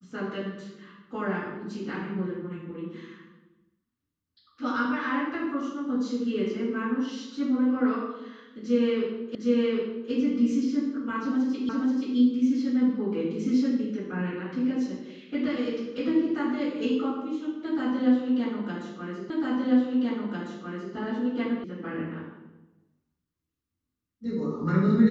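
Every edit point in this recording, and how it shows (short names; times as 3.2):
9.35 repeat of the last 0.76 s
11.69 repeat of the last 0.48 s
19.3 repeat of the last 1.65 s
21.64 sound cut off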